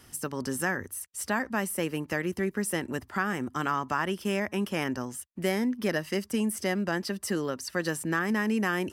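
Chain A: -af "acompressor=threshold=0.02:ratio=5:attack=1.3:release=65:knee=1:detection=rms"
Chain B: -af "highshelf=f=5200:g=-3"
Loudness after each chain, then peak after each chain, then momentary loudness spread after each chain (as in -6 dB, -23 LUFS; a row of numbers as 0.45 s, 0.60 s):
-39.0 LUFS, -30.5 LUFS; -25.5 dBFS, -14.0 dBFS; 3 LU, 5 LU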